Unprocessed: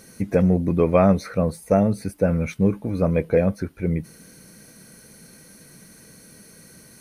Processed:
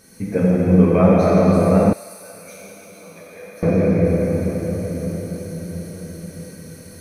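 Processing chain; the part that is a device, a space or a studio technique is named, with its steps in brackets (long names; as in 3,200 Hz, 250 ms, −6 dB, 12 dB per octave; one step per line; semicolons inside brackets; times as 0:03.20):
cathedral (convolution reverb RT60 6.1 s, pre-delay 4 ms, DRR −9 dB)
0:01.93–0:03.63: first difference
level −4.5 dB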